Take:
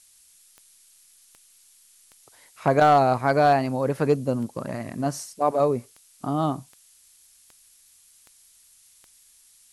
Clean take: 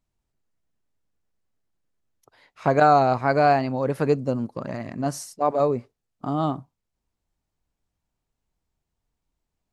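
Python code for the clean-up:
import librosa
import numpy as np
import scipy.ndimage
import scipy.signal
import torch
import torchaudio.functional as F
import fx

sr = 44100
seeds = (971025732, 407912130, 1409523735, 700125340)

y = fx.fix_declip(x, sr, threshold_db=-9.5)
y = fx.fix_declick_ar(y, sr, threshold=10.0)
y = fx.noise_reduce(y, sr, print_start_s=1.39, print_end_s=1.89, reduce_db=25.0)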